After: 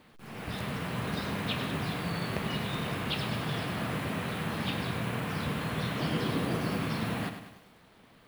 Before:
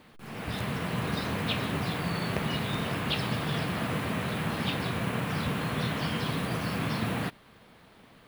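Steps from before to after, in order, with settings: 5.99–6.77 s: peaking EQ 340 Hz +7 dB 1.5 oct; bit-crushed delay 101 ms, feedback 55%, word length 9-bit, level -9 dB; trim -3 dB

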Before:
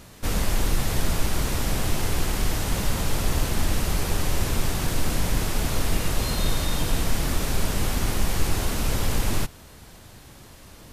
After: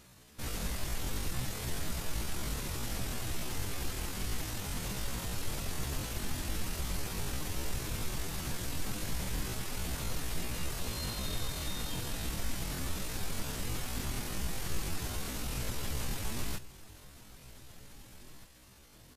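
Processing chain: octave divider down 2 oct, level -4 dB; peaking EQ 610 Hz -4 dB 2.9 oct; doubling 16 ms -12 dB; delay 1071 ms -18 dB; tempo 0.57×; bass shelf 110 Hz -5.5 dB; trim -8.5 dB

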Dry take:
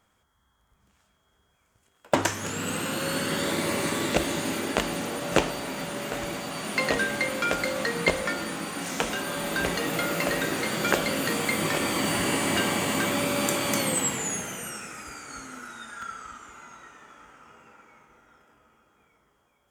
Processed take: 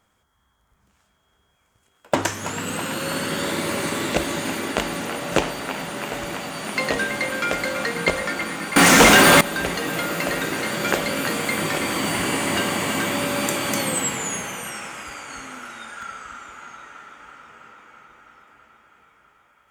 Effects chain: on a send: feedback echo behind a band-pass 327 ms, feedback 76%, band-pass 1.5 kHz, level -7.5 dB; 8.76–9.41 s: on the sum: waveshaping leveller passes 5; trim +2 dB

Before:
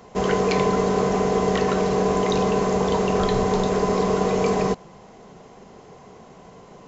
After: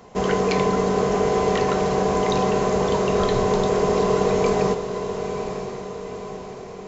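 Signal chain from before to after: echo that smears into a reverb 962 ms, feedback 51%, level -8.5 dB

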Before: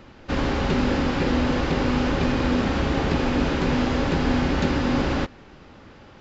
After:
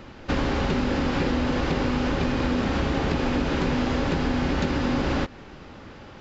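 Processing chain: compression, threshold -24 dBFS, peak gain reduction 8 dB; trim +3.5 dB

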